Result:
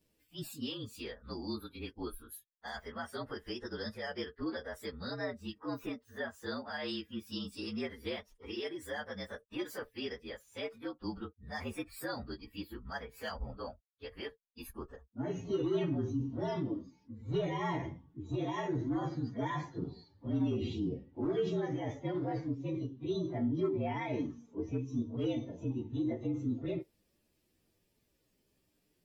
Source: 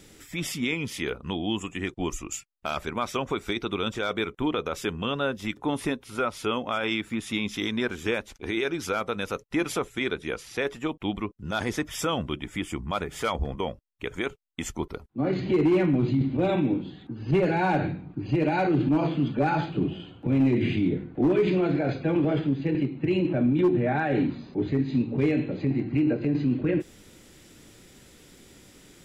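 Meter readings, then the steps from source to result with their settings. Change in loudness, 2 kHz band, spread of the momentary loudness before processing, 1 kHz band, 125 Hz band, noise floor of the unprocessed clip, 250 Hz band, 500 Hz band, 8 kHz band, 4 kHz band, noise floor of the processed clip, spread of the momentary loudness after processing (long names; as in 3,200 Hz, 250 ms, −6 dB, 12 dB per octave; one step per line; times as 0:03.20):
−11.0 dB, −12.5 dB, 10 LU, −12.0 dB, −10.5 dB, −53 dBFS, −11.5 dB, −10.5 dB, −16.0 dB, −10.5 dB, −77 dBFS, 12 LU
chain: partials spread apart or drawn together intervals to 114%
noise reduction from a noise print of the clip's start 12 dB
level −8.5 dB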